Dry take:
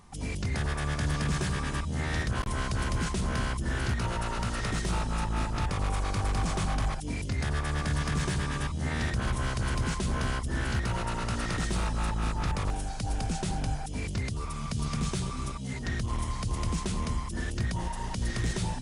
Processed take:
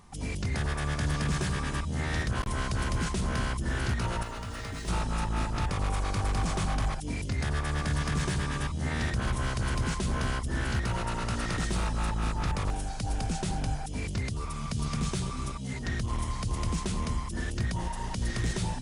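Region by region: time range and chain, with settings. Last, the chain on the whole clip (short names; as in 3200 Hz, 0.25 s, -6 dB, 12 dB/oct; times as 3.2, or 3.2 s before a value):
4.23–4.88 median filter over 3 samples + resonator 91 Hz, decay 0.18 s, harmonics odd, mix 80% + fast leveller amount 70%
whole clip: dry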